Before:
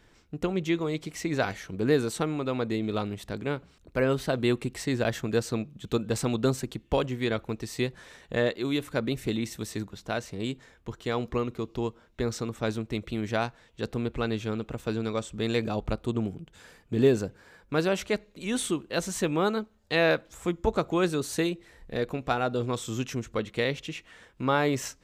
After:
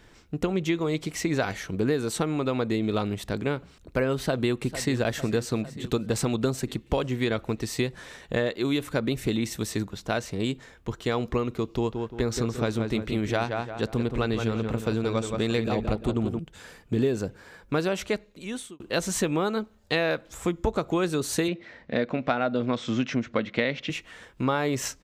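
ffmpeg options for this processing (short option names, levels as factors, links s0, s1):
-filter_complex "[0:a]asplit=2[s0][s1];[s1]afade=t=in:st=4.16:d=0.01,afade=t=out:st=4.97:d=0.01,aecho=0:1:450|900|1350|1800|2250|2700|3150:0.16788|0.109122|0.0709295|0.0461042|0.0299677|0.019479|0.0126614[s2];[s0][s2]amix=inputs=2:normalize=0,asettb=1/sr,asplit=3[s3][s4][s5];[s3]atrim=end=11.744[s6];[s4]atrim=start=11.74:end=16.39,asetpts=PTS-STARTPTS,afade=t=in:d=0.004:c=qsin,afade=t=out:st=4.646:d=0.004:c=qsin,asplit=2[s7][s8];[s8]adelay=173,lowpass=f=2800:p=1,volume=0.473,asplit=2[s9][s10];[s10]adelay=173,lowpass=f=2800:p=1,volume=0.39,asplit=2[s11][s12];[s12]adelay=173,lowpass=f=2800:p=1,volume=0.39,asplit=2[s13][s14];[s14]adelay=173,lowpass=f=2800:p=1,volume=0.39,asplit=2[s15][s16];[s16]adelay=173,lowpass=f=2800:p=1,volume=0.39[s17];[s7][s9][s11][s13][s15][s17]amix=inputs=6:normalize=0,atrim=end_sample=205065[s18];[s5]atrim=start=16.386[s19];[s6][s18]acrossfade=d=0.004:c1=hsin:c2=qsin[s20];[s20][s19]acrossfade=d=0.004:c1=qsin:c2=hsin,asettb=1/sr,asplit=3[s21][s22][s23];[s21]atrim=end=21.484[s24];[s22]atrim=start=21.48:end=23.9,asetpts=PTS-STARTPTS,afade=t=in:d=0.004:c=qsin,afade=t=out:st=2.416:d=0.004:c=qsin,highpass=120,equalizer=f=240:t=q:w=4:g=7,equalizer=f=410:t=q:w=4:g=-4,equalizer=f=600:t=q:w=4:g=7,equalizer=f=1500:t=q:w=4:g=4,equalizer=f=2100:t=q:w=4:g=6,lowpass=f=5100:w=0.5412,lowpass=f=5100:w=1.3066[s25];[s23]atrim=start=23.896[s26];[s24][s25]acrossfade=d=0.004:c1=hsin:c2=qsin[s27];[s27][s26]acrossfade=d=0.004:c1=qsin:c2=hsin,asplit=2[s28][s29];[s28]atrim=end=18.8,asetpts=PTS-STARTPTS,afade=t=out:st=17.9:d=0.9[s30];[s29]atrim=start=18.8,asetpts=PTS-STARTPTS,afade=t=in:d=0.004:c=hsin[s31];[s30][s31]concat=n=2:v=0:a=1,acompressor=threshold=0.0447:ratio=5,volume=1.88"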